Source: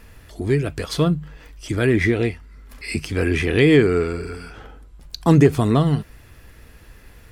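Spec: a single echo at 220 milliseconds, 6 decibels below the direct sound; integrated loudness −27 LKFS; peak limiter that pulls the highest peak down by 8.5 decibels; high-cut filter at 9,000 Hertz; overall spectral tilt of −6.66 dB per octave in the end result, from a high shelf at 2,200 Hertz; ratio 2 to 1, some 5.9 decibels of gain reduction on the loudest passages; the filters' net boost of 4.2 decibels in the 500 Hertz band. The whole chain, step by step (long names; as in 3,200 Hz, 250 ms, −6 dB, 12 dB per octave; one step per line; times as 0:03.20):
low-pass filter 9,000 Hz
parametric band 500 Hz +5.5 dB
high-shelf EQ 2,200 Hz −5 dB
downward compressor 2 to 1, threshold −17 dBFS
brickwall limiter −14.5 dBFS
single-tap delay 220 ms −6 dB
level −2 dB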